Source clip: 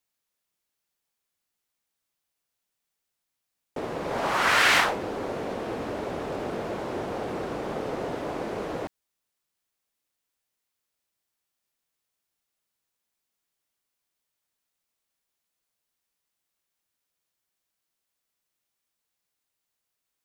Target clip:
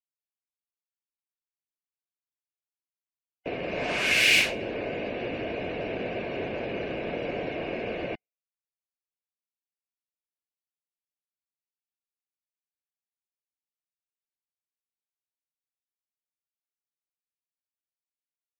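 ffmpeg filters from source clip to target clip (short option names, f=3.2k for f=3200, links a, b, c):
-filter_complex "[0:a]asetrate=48000,aresample=44100,superequalizer=9b=0.355:10b=0.355:12b=2.82,acrossover=split=330|610|2500[a][b][c][d];[c]acompressor=threshold=-32dB:ratio=6[e];[a][b][e][d]amix=inputs=4:normalize=0,afftdn=nr=28:nf=-50"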